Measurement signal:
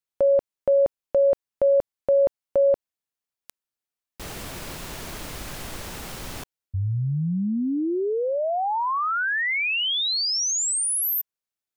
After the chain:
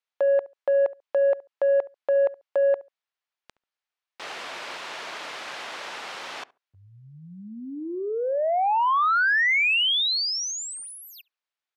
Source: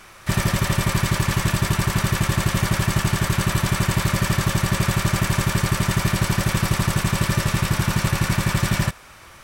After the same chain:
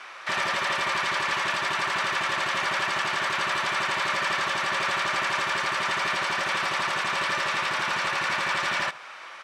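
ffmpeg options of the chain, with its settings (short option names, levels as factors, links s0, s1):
-filter_complex "[0:a]asplit=2[s0][s1];[s1]alimiter=limit=0.158:level=0:latency=1:release=157,volume=0.891[s2];[s0][s2]amix=inputs=2:normalize=0,highpass=690,asoftclip=type=tanh:threshold=0.168,lowpass=3800,asplit=2[s3][s4];[s4]adelay=70,lowpass=f=1300:p=1,volume=0.112,asplit=2[s5][s6];[s6]adelay=70,lowpass=f=1300:p=1,volume=0.19[s7];[s3][s5][s7]amix=inputs=3:normalize=0"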